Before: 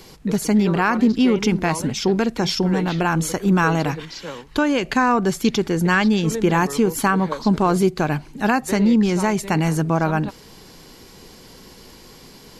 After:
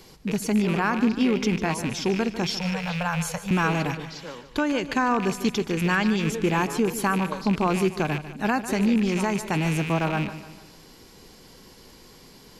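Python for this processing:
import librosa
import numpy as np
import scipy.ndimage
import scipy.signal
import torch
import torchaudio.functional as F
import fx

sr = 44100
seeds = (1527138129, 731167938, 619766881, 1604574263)

y = fx.rattle_buzz(x, sr, strikes_db=-24.0, level_db=-17.0)
y = fx.ellip_bandstop(y, sr, low_hz=180.0, high_hz=490.0, order=3, stop_db=40, at=(2.51, 3.51))
y = fx.echo_feedback(y, sr, ms=148, feedback_pct=44, wet_db=-13)
y = F.gain(torch.from_numpy(y), -5.5).numpy()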